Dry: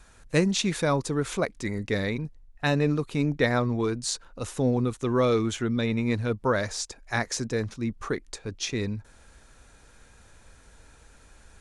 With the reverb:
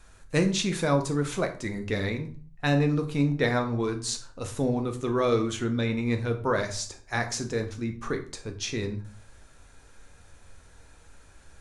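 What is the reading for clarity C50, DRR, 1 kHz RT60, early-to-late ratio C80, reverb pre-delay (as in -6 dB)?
12.0 dB, 4.5 dB, 0.40 s, 16.0 dB, 11 ms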